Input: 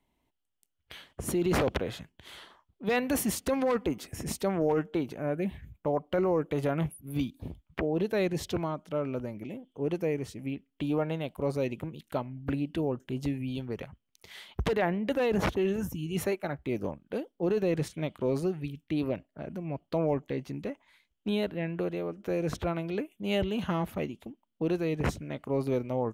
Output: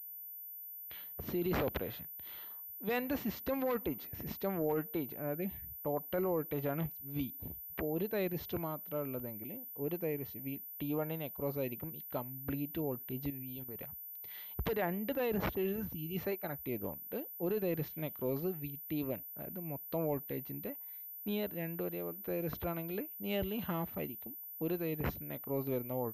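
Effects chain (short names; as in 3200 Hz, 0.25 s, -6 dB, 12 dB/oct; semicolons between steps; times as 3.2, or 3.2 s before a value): median filter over 5 samples; 13.3–13.83 level quantiser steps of 13 dB; pulse-width modulation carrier 14000 Hz; gain -7 dB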